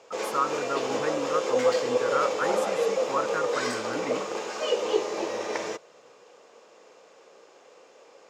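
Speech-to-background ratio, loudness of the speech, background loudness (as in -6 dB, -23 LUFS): -4.5 dB, -32.5 LUFS, -28.0 LUFS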